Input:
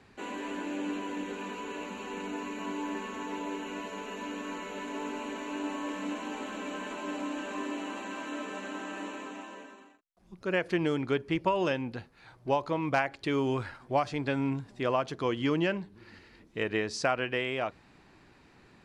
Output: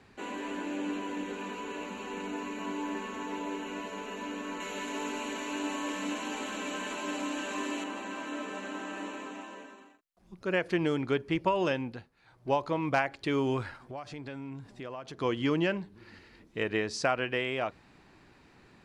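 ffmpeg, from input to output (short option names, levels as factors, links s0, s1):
-filter_complex "[0:a]asettb=1/sr,asplit=3[s0][s1][s2];[s0]atrim=end=4.604[s3];[s1]atrim=start=4.6:end=7.84,asetpts=PTS-STARTPTS,afade=t=in:d=0.004:c=qsin,afade=t=out:st=3.236:d=0.004:c=qsin,highshelf=f=2400:g=8.5[s4];[s2]atrim=start=7.836[s5];[s3][s4]acrossfade=d=0.004:c1=hsin:c2=qsin[s6];[s6][s5]acrossfade=d=0.004:c1=qsin:c2=hsin,asettb=1/sr,asplit=3[s7][s8][s9];[s7]atrim=end=13.814[s10];[s8]atrim=start=13.81:end=15.21,asetpts=PTS-STARTPTS,afade=t=in:d=0.004:c=qsin,afade=t=out:st=1.396:d=0.004:c=qsin,acompressor=threshold=0.00891:ratio=3:attack=3.2:release=140:knee=1:detection=peak[s11];[s9]atrim=start=15.206[s12];[s10][s11]acrossfade=d=0.004:c1=hsin:c2=qsin[s13];[s13][s12]acrossfade=d=0.004:c1=qsin:c2=hsin,asplit=3[s14][s15][s16];[s14]atrim=end=12.1,asetpts=PTS-STARTPTS,afade=t=out:st=11.81:d=0.29:silence=0.354813[s17];[s15]atrim=start=12.1:end=12.25,asetpts=PTS-STARTPTS,volume=0.355[s18];[s16]atrim=start=12.25,asetpts=PTS-STARTPTS,afade=t=in:d=0.29:silence=0.354813[s19];[s17][s18][s19]concat=n=3:v=0:a=1"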